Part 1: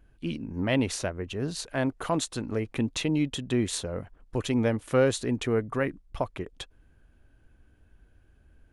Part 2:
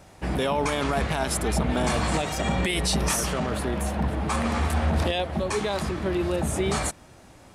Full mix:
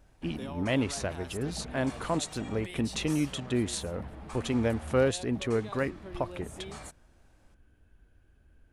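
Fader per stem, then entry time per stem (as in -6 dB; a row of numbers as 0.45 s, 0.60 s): -2.5 dB, -17.5 dB; 0.00 s, 0.00 s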